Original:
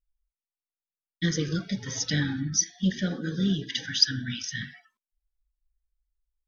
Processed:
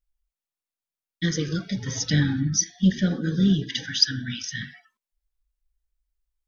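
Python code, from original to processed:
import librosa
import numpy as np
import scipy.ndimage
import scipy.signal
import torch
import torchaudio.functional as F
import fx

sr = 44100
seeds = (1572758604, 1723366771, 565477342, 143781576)

y = fx.low_shelf(x, sr, hz=260.0, db=7.0, at=(1.75, 3.84))
y = F.gain(torch.from_numpy(y), 1.5).numpy()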